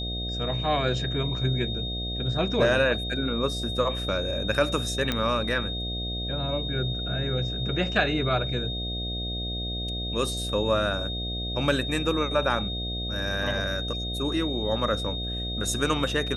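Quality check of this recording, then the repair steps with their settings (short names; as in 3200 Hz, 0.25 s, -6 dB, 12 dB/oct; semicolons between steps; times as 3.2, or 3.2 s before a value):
buzz 60 Hz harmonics 12 -33 dBFS
tone 3700 Hz -32 dBFS
5.12 pop -11 dBFS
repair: de-click; de-hum 60 Hz, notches 12; notch 3700 Hz, Q 30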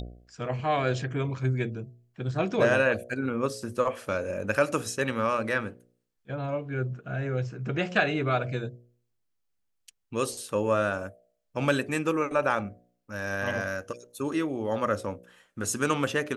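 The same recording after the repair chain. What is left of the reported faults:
none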